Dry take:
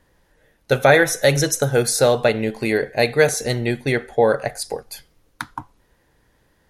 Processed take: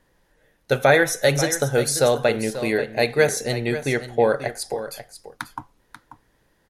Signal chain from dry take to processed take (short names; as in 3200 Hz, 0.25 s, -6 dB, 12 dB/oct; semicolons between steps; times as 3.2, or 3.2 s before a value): bell 72 Hz -6 dB 0.78 oct; on a send: echo 0.538 s -12 dB; on the sum: gain -2.5 dB